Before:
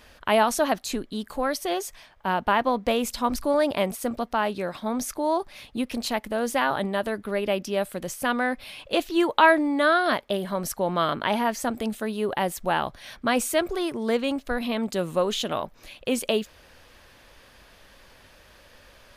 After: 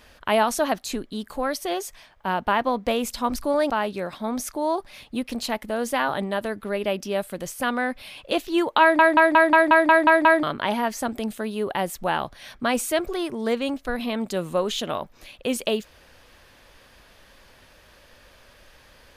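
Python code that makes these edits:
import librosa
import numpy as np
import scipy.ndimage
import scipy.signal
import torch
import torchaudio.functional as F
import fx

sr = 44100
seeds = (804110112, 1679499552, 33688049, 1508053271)

y = fx.edit(x, sr, fx.cut(start_s=3.7, length_s=0.62),
    fx.stutter_over(start_s=9.43, slice_s=0.18, count=9), tone=tone)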